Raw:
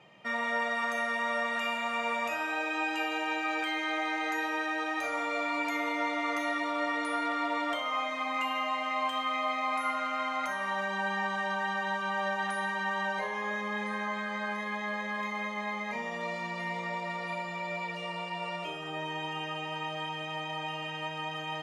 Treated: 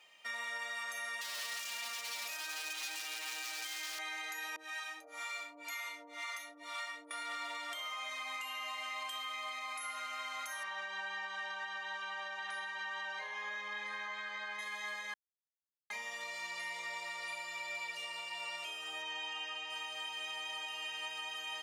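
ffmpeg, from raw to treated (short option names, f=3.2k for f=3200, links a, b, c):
-filter_complex "[0:a]asettb=1/sr,asplit=3[a][b][c];[a]atrim=end=1.214[d];[b]atrim=start=1.21:end=3.99,asetpts=PTS-STARTPTS,afade=t=in:d=0.004:c=qsin,afade=t=out:st=2.776:d=0.004:c=qsin,aeval=exprs='0.0335*(abs(mod(val(0)/0.0335+3,4)-2)-1)':c=same[e];[c]atrim=start=3.986[f];[d][e]acrossfade=d=0.004:c1=hsin:c2=qsin[g];[g][f]acrossfade=d=0.004:c1=qsin:c2=hsin,asettb=1/sr,asplit=3[h][i][j];[h]atrim=end=4.564[k];[i]atrim=start=4.56:end=7.11,asetpts=PTS-STARTPTS,afade=t=in:d=0.004:c=qsin,afade=t=out:st=2.546:d=0.004:c=qsin,acrossover=split=600[l][m];[l]aeval=exprs='val(0)*(1-1/2+1/2*cos(2*PI*2*n/s))':c=same[n];[m]aeval=exprs='val(0)*(1-1/2-1/2*cos(2*PI*2*n/s))':c=same[o];[n][o]amix=inputs=2:normalize=0[p];[j]atrim=start=7.106[q];[k][p]acrossfade=d=0.004:c1=hsin:c2=qsin[r];[r][q]acrossfade=d=0.004:c1=qsin:c2=hsin,asettb=1/sr,asplit=3[s][t][u];[s]atrim=end=10.634[v];[t]atrim=start=10.63:end=14.59,asetpts=PTS-STARTPTS,afade=t=in:d=0.004:c=qsin,afade=t=out:st=3.956:d=0.004:c=qsin,lowpass=4k[w];[u]atrim=start=14.586[x];[v][w]acrossfade=d=0.004:c1=hsin:c2=qsin[y];[y][x]acrossfade=d=0.004:c1=qsin:c2=hsin,asettb=1/sr,asplit=3[z][aa][ab];[z]atrim=end=19.024[ac];[aa]atrim=start=19.02:end=19.7,asetpts=PTS-STARTPTS,afade=t=in:d=0.004:c=qsin,afade=t=out:st=0.676:d=0.004:c=qsin,highpass=110,lowpass=5.9k[ad];[ab]atrim=start=19.696[ae];[ac][ad]acrossfade=d=0.004:c1=hsin:c2=qsin[af];[af][ae]acrossfade=d=0.004:c1=qsin:c2=hsin,asplit=3[ag][ah][ai];[ag]atrim=end=15.14,asetpts=PTS-STARTPTS,afade=t=out:st=15.136:d=0.004:c=hsin[aj];[ah]atrim=start=15.14:end=15.9,asetpts=PTS-STARTPTS,volume=0[ak];[ai]atrim=start=15.9,asetpts=PTS-STARTPTS,afade=t=in:d=0.004:c=hsin[al];[aj][ak][al]concat=n=3:v=0:a=1,aderivative,alimiter=level_in=16.5dB:limit=-24dB:level=0:latency=1:release=201,volume=-16.5dB,highpass=200,volume=8dB"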